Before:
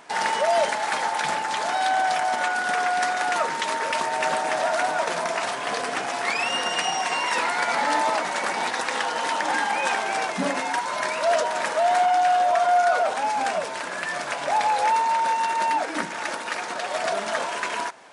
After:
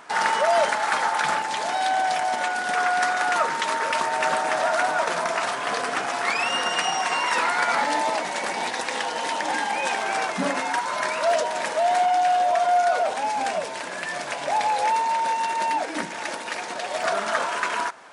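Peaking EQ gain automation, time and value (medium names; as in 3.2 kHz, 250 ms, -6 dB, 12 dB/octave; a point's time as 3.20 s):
peaking EQ 1.3 kHz 0.64 oct
+6.5 dB
from 1.42 s -3 dB
from 2.76 s +4 dB
from 7.84 s -5.5 dB
from 10.01 s +2 dB
from 11.31 s -4.5 dB
from 17.03 s +6 dB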